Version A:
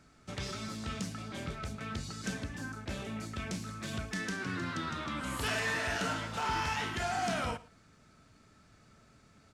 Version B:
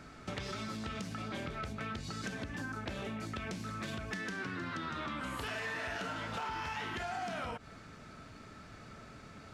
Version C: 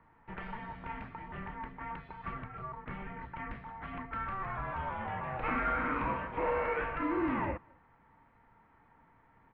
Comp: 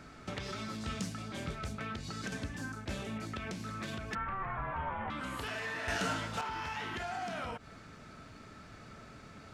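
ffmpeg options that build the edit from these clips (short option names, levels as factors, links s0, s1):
-filter_complex "[0:a]asplit=3[s0][s1][s2];[1:a]asplit=5[s3][s4][s5][s6][s7];[s3]atrim=end=0.812[s8];[s0]atrim=start=0.808:end=1.782[s9];[s4]atrim=start=1.778:end=2.322[s10];[s1]atrim=start=2.318:end=3.182[s11];[s5]atrim=start=3.178:end=4.152[s12];[2:a]atrim=start=4.148:end=5.102[s13];[s6]atrim=start=5.098:end=5.882[s14];[s2]atrim=start=5.878:end=6.412[s15];[s7]atrim=start=6.408[s16];[s8][s9]acrossfade=d=0.004:c1=hsin:c2=hsin[s17];[s17][s10]acrossfade=d=0.004:c1=hsin:c2=hsin[s18];[s18][s11]acrossfade=d=0.004:c1=hsin:c2=hsin[s19];[s19][s12]acrossfade=d=0.004:c1=hsin:c2=hsin[s20];[s20][s13]acrossfade=d=0.004:c1=hsin:c2=hsin[s21];[s21][s14]acrossfade=d=0.004:c1=hsin:c2=hsin[s22];[s22][s15]acrossfade=d=0.004:c1=hsin:c2=hsin[s23];[s23][s16]acrossfade=d=0.004:c1=hsin:c2=hsin"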